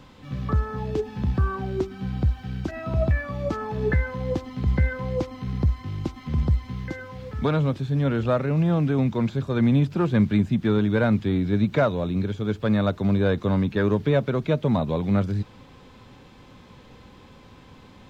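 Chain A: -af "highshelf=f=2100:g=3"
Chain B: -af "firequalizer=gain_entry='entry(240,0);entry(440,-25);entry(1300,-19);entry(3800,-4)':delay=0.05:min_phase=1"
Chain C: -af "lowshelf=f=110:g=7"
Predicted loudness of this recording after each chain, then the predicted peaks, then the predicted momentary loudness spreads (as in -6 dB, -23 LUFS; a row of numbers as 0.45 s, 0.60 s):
-24.5 LUFS, -26.0 LUFS, -22.0 LUFS; -9.0 dBFS, -10.0 dBFS, -6.5 dBFS; 9 LU, 10 LU, 8 LU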